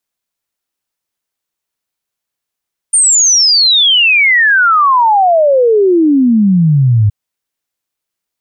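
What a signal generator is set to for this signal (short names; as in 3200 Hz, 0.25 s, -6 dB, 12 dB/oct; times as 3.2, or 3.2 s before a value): log sweep 9100 Hz -> 100 Hz 4.17 s -5.5 dBFS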